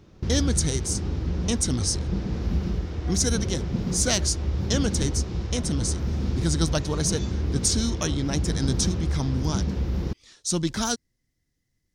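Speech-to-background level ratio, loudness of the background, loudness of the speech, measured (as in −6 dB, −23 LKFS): 2.0 dB, −29.0 LKFS, −27.0 LKFS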